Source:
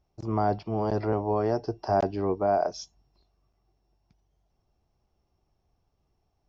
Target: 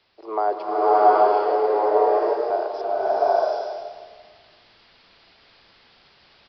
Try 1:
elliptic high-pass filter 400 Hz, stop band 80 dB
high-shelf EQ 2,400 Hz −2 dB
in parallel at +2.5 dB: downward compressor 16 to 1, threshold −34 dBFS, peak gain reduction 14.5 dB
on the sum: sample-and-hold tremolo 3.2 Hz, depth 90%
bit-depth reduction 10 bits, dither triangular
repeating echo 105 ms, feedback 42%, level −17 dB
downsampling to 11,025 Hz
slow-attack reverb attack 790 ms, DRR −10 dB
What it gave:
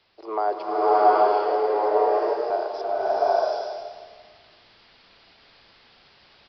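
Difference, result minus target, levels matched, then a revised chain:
downward compressor: peak gain reduction +7 dB; 4,000 Hz band +3.5 dB
elliptic high-pass filter 400 Hz, stop band 80 dB
high-shelf EQ 2,400 Hz −8 dB
in parallel at +2.5 dB: downward compressor 16 to 1, threshold −27 dBFS, peak gain reduction 7.5 dB
on the sum: sample-and-hold tremolo 3.2 Hz, depth 90%
bit-depth reduction 10 bits, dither triangular
repeating echo 105 ms, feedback 42%, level −17 dB
downsampling to 11,025 Hz
slow-attack reverb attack 790 ms, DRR −10 dB

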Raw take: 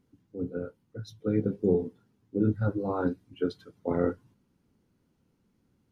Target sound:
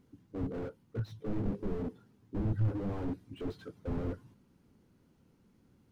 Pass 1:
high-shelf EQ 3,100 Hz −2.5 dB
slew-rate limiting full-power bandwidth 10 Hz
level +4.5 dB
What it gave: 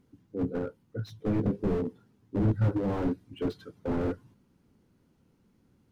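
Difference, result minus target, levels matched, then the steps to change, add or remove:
slew-rate limiting: distortion −8 dB
change: slew-rate limiting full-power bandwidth 3.5 Hz

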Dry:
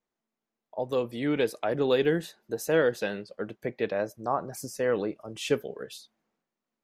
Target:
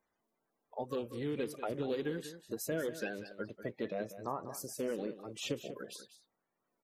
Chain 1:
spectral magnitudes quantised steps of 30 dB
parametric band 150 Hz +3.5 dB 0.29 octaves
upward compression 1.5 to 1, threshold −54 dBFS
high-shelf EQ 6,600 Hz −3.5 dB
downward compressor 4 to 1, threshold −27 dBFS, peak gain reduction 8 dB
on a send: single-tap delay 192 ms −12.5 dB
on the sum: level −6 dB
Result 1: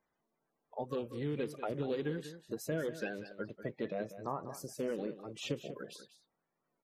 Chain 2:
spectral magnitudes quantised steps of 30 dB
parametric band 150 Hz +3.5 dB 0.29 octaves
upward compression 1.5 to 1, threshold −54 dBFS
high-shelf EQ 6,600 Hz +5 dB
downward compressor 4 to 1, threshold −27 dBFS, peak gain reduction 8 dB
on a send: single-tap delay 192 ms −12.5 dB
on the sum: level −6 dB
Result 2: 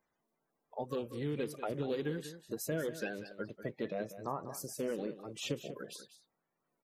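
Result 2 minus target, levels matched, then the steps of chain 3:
125 Hz band +3.0 dB
spectral magnitudes quantised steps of 30 dB
parametric band 150 Hz −3 dB 0.29 octaves
upward compression 1.5 to 1, threshold −54 dBFS
high-shelf EQ 6,600 Hz +5 dB
downward compressor 4 to 1, threshold −27 dBFS, peak gain reduction 7.5 dB
on a send: single-tap delay 192 ms −12.5 dB
on the sum: level −6 dB

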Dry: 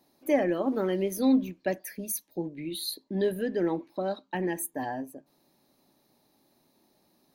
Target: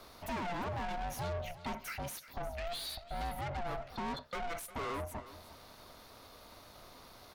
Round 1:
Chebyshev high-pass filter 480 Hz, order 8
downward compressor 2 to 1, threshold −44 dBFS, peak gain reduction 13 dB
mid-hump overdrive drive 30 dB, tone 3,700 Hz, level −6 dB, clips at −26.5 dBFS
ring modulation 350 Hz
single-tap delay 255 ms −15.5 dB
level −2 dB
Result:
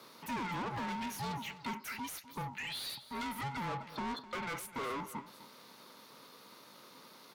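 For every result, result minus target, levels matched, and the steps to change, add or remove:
echo 100 ms early; 500 Hz band −5.0 dB
change: single-tap delay 355 ms −15.5 dB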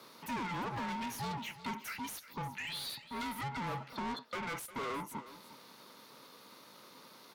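500 Hz band −5.5 dB
change: Chebyshev high-pass filter 200 Hz, order 8

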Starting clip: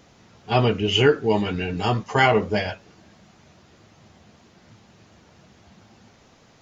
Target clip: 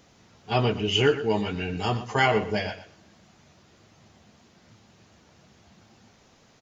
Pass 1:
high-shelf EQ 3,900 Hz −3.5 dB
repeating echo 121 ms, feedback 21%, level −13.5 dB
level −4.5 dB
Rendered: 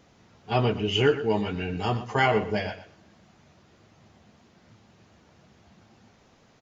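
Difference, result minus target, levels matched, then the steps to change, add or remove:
8,000 Hz band −5.0 dB
change: high-shelf EQ 3,900 Hz +4 dB

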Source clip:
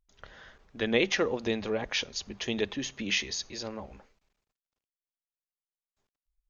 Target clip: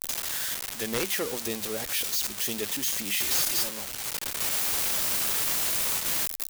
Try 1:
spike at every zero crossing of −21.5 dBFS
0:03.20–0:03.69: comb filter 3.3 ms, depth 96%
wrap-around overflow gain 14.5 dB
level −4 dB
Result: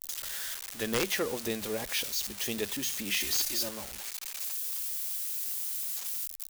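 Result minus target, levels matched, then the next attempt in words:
spike at every zero crossing: distortion −7 dB
spike at every zero crossing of −13.5 dBFS
0:03.20–0:03.69: comb filter 3.3 ms, depth 96%
wrap-around overflow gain 14.5 dB
level −4 dB

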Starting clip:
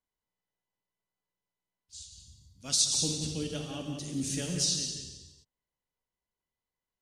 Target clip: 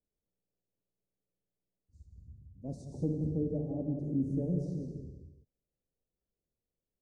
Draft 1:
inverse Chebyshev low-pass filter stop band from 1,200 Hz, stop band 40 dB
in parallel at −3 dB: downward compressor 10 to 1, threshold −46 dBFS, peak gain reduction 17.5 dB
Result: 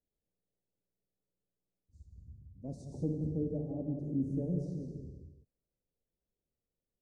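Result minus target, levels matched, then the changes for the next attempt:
downward compressor: peak gain reduction +9.5 dB
change: downward compressor 10 to 1, threshold −35.5 dBFS, peak gain reduction 8 dB

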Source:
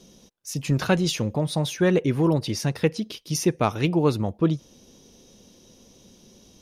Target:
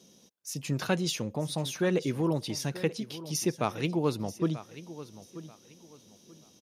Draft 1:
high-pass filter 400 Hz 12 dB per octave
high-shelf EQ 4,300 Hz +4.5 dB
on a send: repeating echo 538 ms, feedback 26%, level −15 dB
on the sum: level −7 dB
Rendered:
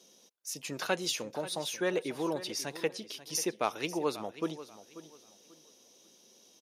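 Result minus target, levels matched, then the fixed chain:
125 Hz band −12.0 dB; echo 398 ms early
high-pass filter 120 Hz 12 dB per octave
high-shelf EQ 4,300 Hz +4.5 dB
on a send: repeating echo 936 ms, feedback 26%, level −15 dB
on the sum: level −7 dB

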